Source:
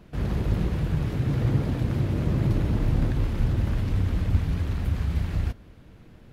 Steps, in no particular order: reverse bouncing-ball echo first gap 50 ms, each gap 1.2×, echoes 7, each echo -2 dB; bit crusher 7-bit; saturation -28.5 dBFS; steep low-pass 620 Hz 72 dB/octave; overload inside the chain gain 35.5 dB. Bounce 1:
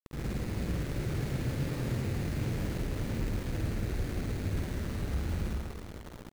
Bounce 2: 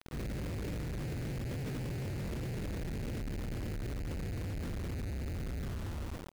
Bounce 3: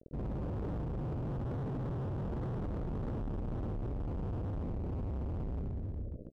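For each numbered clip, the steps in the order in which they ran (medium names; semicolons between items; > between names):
overload inside the chain > steep low-pass > saturation > bit crusher > reverse bouncing-ball echo; reverse bouncing-ball echo > overload inside the chain > steep low-pass > bit crusher > saturation; bit crusher > reverse bouncing-ball echo > saturation > steep low-pass > overload inside the chain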